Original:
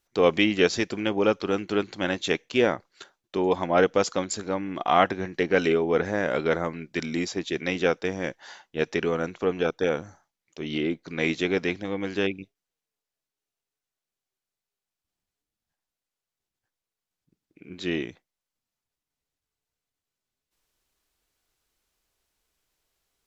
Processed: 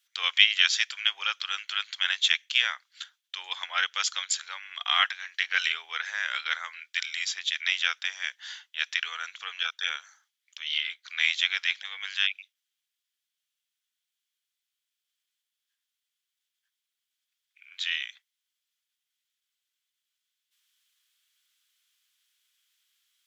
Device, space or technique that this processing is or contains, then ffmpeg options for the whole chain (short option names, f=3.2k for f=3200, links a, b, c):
headphones lying on a table: -af "highpass=f=1.5k:w=0.5412,highpass=f=1.5k:w=1.3066,equalizer=f=3.3k:t=o:w=0.32:g=9,volume=3.5dB"